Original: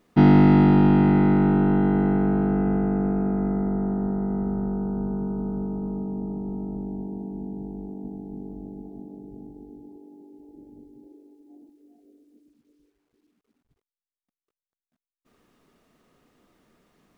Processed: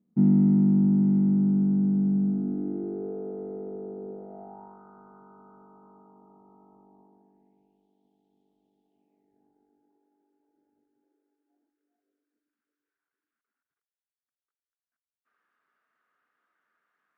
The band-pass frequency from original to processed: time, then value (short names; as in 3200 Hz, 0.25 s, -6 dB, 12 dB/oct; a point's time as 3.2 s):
band-pass, Q 4.7
2.23 s 200 Hz
3.15 s 450 Hz
4.11 s 450 Hz
4.83 s 1200 Hz
7.02 s 1200 Hz
7.87 s 3300 Hz
8.84 s 3300 Hz
9.49 s 1500 Hz